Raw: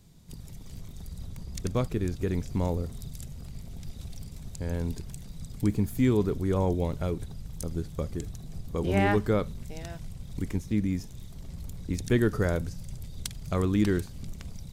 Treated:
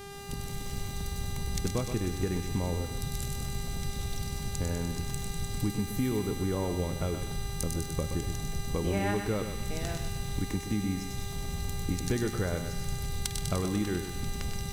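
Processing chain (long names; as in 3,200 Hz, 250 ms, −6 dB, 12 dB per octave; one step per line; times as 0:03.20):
downward compressor 5 to 1, threshold −34 dBFS, peak gain reduction 14 dB
hum with harmonics 400 Hz, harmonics 33, −51 dBFS −5 dB per octave
delay with a high-pass on its return 99 ms, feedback 73%, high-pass 2,900 Hz, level −4.5 dB
feedback echo at a low word length 124 ms, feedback 35%, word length 9 bits, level −8.5 dB
level +6 dB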